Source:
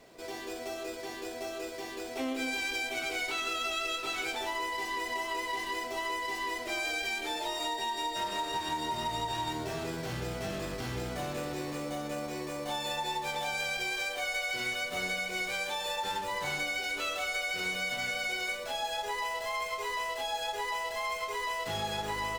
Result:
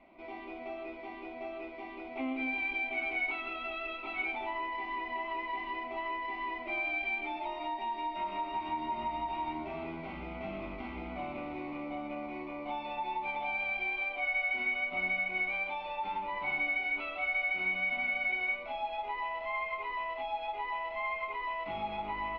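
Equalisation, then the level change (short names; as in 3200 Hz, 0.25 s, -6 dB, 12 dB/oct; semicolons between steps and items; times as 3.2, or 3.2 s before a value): synth low-pass 2200 Hz, resonance Q 6.4; air absorption 300 m; fixed phaser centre 460 Hz, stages 6; 0.0 dB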